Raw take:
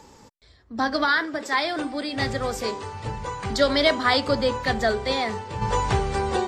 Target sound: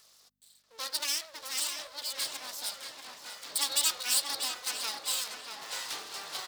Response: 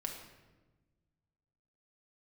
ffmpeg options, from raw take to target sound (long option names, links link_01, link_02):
-filter_complex "[0:a]equalizer=frequency=125:width_type=o:width=1:gain=-7,equalizer=frequency=250:width_type=o:width=1:gain=10,equalizer=frequency=2000:width_type=o:width=1:gain=-7,equalizer=frequency=4000:width_type=o:width=1:gain=10,equalizer=frequency=8000:width_type=o:width=1:gain=-9,aeval=exprs='abs(val(0))':channel_layout=same,asplit=2[link_01][link_02];[link_02]adelay=637,lowpass=frequency=3000:poles=1,volume=-5dB,asplit=2[link_03][link_04];[link_04]adelay=637,lowpass=frequency=3000:poles=1,volume=0.52,asplit=2[link_05][link_06];[link_06]adelay=637,lowpass=frequency=3000:poles=1,volume=0.52,asplit=2[link_07][link_08];[link_08]adelay=637,lowpass=frequency=3000:poles=1,volume=0.52,asplit=2[link_09][link_10];[link_10]adelay=637,lowpass=frequency=3000:poles=1,volume=0.52,asplit=2[link_11][link_12];[link_12]adelay=637,lowpass=frequency=3000:poles=1,volume=0.52,asplit=2[link_13][link_14];[link_14]adelay=637,lowpass=frequency=3000:poles=1,volume=0.52[link_15];[link_03][link_05][link_07][link_09][link_11][link_13][link_15]amix=inputs=7:normalize=0[link_16];[link_01][link_16]amix=inputs=2:normalize=0,aeval=exprs='val(0)+0.00398*(sin(2*PI*50*n/s)+sin(2*PI*2*50*n/s)/2+sin(2*PI*3*50*n/s)/3+sin(2*PI*4*50*n/s)/4+sin(2*PI*5*50*n/s)/5)':channel_layout=same,aderivative"